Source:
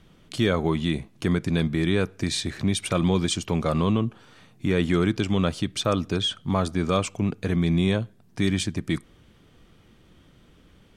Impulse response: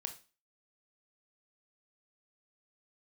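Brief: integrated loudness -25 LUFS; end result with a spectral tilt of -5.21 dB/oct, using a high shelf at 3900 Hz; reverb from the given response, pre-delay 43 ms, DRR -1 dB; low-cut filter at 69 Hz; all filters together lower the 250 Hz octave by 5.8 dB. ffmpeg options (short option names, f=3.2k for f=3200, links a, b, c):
-filter_complex "[0:a]highpass=69,equalizer=f=250:t=o:g=-9,highshelf=f=3.9k:g=-3.5,asplit=2[a][b];[1:a]atrim=start_sample=2205,adelay=43[c];[b][c]afir=irnorm=-1:irlink=0,volume=3dB[d];[a][d]amix=inputs=2:normalize=0"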